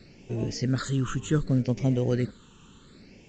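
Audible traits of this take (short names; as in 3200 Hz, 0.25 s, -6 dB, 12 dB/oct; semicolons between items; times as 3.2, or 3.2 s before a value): phasing stages 8, 0.67 Hz, lowest notch 630–1300 Hz; µ-law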